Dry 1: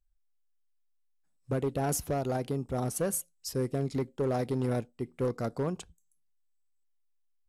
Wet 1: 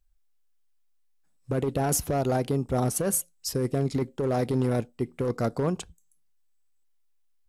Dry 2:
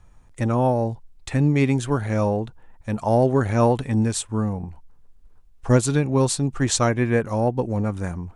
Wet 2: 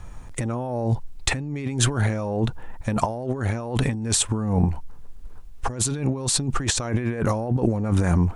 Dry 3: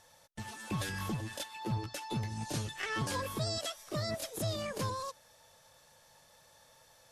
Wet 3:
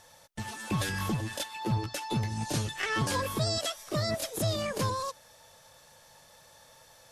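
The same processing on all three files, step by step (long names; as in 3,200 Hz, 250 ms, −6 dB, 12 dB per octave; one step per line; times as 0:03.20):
compressor whose output falls as the input rises −30 dBFS, ratio −1
level +5.5 dB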